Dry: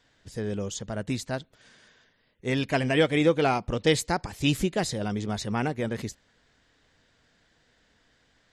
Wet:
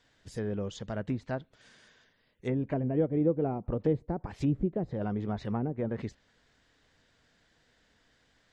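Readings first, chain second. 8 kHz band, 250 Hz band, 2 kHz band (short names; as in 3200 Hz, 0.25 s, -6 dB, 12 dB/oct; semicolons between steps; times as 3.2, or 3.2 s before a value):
under -15 dB, -3.0 dB, -16.5 dB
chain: treble ducked by the level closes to 460 Hz, closed at -22.5 dBFS; gain -2.5 dB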